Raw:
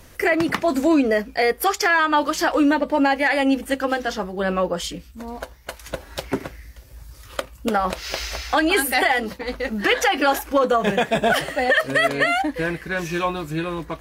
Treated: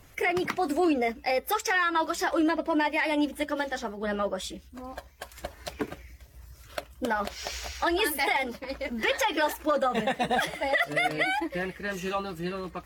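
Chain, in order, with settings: coarse spectral quantiser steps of 15 dB; tape speed +9%; trim -7 dB

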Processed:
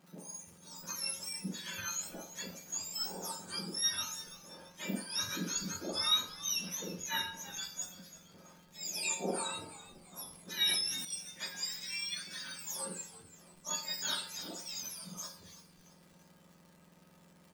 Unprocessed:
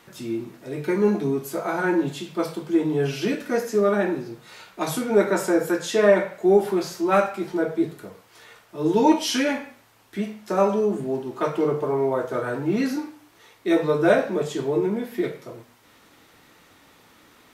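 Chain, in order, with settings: spectrum inverted on a logarithmic axis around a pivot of 1.5 kHz; crackle 210 per s -39 dBFS; feedback comb 180 Hz, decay 0.25 s, harmonics odd, mix 80%; frequency-shifting echo 335 ms, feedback 41%, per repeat -89 Hz, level -15.5 dB; 10.31–11.05 s: decay stretcher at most 32 dB/s; trim -1 dB

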